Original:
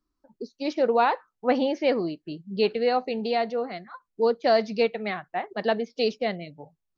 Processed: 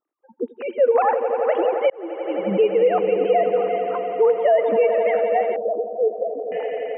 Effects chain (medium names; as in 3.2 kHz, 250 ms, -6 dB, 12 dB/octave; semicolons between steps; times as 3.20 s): formants replaced by sine waves; echo with a slow build-up 86 ms, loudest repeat 5, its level -14 dB; peak limiter -17 dBFS, peak gain reduction 7.5 dB; 1.90–2.42 s: fade in; 5.56–6.52 s: Bessel low-pass 500 Hz, order 8; trim +7.5 dB